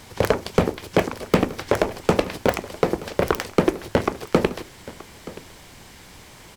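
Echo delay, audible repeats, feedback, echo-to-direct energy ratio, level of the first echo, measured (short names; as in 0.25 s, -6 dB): 0.926 s, 1, no steady repeat, -18.5 dB, -18.5 dB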